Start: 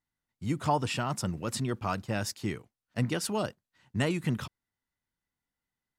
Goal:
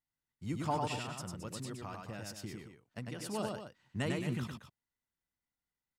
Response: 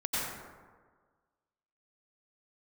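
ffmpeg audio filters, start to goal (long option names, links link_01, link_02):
-filter_complex "[0:a]asettb=1/sr,asplit=3[link_01][link_02][link_03];[link_01]atrim=end=0.924[link_04];[link_02]atrim=start=0.92:end=3.27,asetpts=PTS-STARTPTS,afade=type=in:duration=0.004:curve=qsin,afade=type=out:start_time=2.346:duration=0.004:curve=qsin,acompressor=threshold=-33dB:ratio=6[link_05];[link_03]atrim=start=3.266[link_06];[link_04][link_05]acrossfade=duration=0.004:curve1=hsin:curve2=qsin[link_07];[link_07][link_06]acrossfade=duration=0.004:curve1=qsin:curve2=hsin,aecho=1:1:99.13|218.7:0.708|0.316,volume=-7.5dB"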